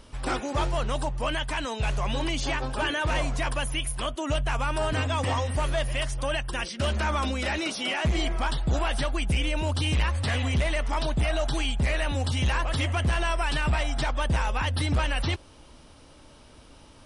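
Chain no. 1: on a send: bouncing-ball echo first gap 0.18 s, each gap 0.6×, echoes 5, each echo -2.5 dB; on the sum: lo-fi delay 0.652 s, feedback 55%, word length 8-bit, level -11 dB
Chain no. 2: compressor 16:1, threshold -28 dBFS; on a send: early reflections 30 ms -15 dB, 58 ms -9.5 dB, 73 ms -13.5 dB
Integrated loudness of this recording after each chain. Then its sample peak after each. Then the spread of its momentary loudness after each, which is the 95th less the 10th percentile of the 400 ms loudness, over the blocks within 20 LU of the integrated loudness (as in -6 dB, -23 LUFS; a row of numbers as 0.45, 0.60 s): -24.0, -32.5 LUFS; -10.0, -19.5 dBFS; 4, 4 LU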